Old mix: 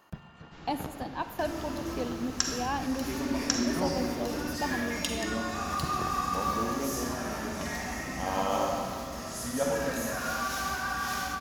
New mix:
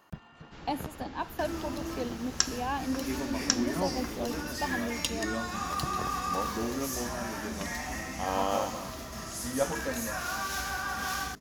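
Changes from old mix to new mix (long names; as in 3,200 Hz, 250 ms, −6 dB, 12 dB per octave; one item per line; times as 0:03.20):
first sound +4.5 dB
second sound +3.5 dB
reverb: off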